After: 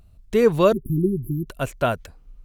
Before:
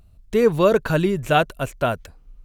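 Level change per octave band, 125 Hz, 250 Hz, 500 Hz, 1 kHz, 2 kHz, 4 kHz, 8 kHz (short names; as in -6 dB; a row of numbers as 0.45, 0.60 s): 0.0, 0.0, -1.5, -5.0, -6.5, -5.5, -2.5 dB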